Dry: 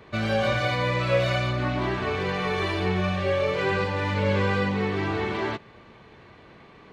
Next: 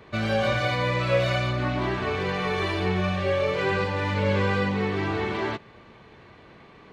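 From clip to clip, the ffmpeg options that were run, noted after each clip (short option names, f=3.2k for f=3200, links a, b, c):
-af anull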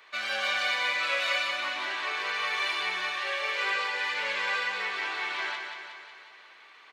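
-filter_complex "[0:a]highpass=1.4k,asplit=2[a][b];[b]aecho=0:1:182|364|546|728|910|1092|1274|1456:0.501|0.296|0.174|0.103|0.0607|0.0358|0.0211|0.0125[c];[a][c]amix=inputs=2:normalize=0,volume=2dB"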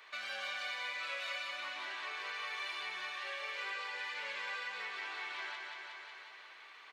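-af "lowshelf=f=360:g=-5.5,acompressor=threshold=-45dB:ratio=2,volume=-1.5dB"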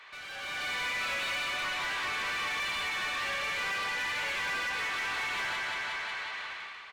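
-filter_complex "[0:a]asplit=2[a][b];[b]highpass=f=720:p=1,volume=23dB,asoftclip=type=tanh:threshold=-28dB[c];[a][c]amix=inputs=2:normalize=0,lowpass=f=3.9k:p=1,volume=-6dB,dynaudnorm=f=150:g=7:m=11dB,volume=-9dB"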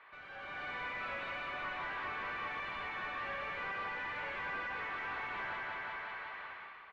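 -af "lowpass=1.6k,volume=-3dB"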